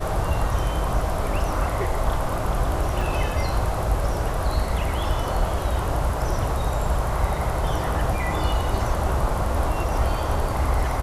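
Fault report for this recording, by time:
3.01 s: dropout 2.2 ms

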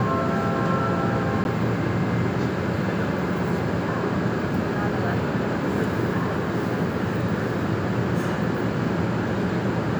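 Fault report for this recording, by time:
1.44–1.45 s: dropout 11 ms

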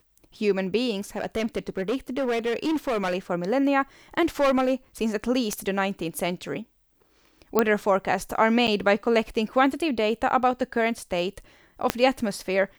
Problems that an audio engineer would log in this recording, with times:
1.16–3.15 s: clipped -21.5 dBFS
4.40–4.74 s: clipped -17 dBFS
5.53 s: pop -12 dBFS
7.59 s: pop -6 dBFS
8.67–8.68 s: dropout 8.3 ms
11.90 s: pop -5 dBFS

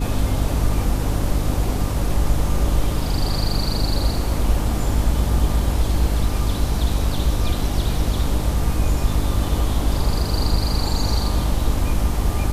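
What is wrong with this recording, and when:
hum 50 Hz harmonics 6 -24 dBFS

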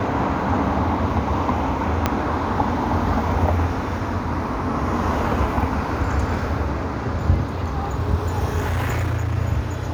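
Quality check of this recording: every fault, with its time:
2.06 s: pop -4 dBFS
8.58–9.36 s: clipped -18.5 dBFS

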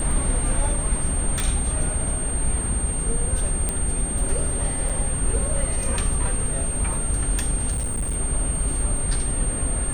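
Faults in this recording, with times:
whine 8.7 kHz -27 dBFS
1.40 s: pop
3.69 s: pop -10 dBFS
4.89–4.90 s: dropout 5.9 ms
7.71–8.15 s: clipped -21 dBFS

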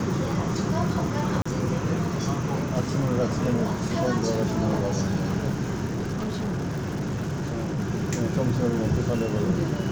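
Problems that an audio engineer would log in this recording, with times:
crackle 160 per s -33 dBFS
1.42–1.46 s: dropout 35 ms
5.85–7.80 s: clipped -25 dBFS

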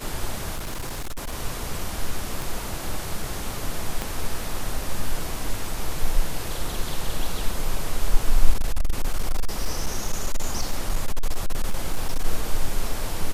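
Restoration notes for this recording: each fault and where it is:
0.55–1.35 s: clipped -26 dBFS
2.42 s: pop
4.02 s: pop -12 dBFS
8.53–12.25 s: clipped -15.5 dBFS

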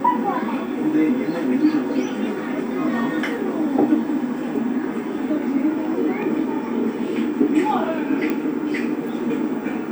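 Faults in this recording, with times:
8.30 s: pop -12 dBFS

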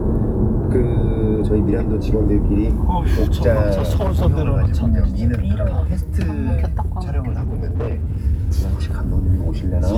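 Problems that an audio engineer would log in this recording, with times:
3.74–4.26 s: clipped -13.5 dBFS
7.28–8.18 s: clipped -18 dBFS

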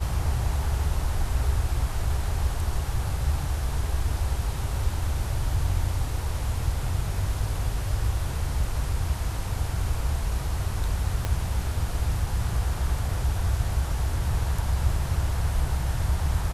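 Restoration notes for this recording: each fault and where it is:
11.25 s: pop -13 dBFS

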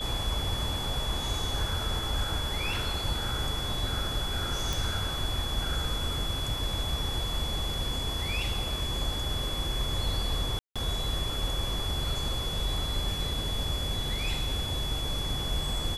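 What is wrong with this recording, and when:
whine 3.4 kHz -34 dBFS
4.73 s: pop
10.59–10.76 s: dropout 166 ms

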